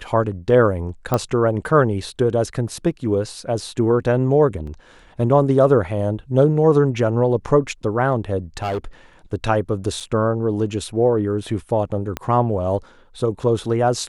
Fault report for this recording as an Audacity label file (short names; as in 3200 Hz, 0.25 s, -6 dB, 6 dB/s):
1.140000	1.140000	pop -6 dBFS
4.670000	4.670000	gap 3.6 ms
8.570000	8.780000	clipped -19.5 dBFS
10.000000	10.010000	gap 5.9 ms
12.170000	12.170000	pop -10 dBFS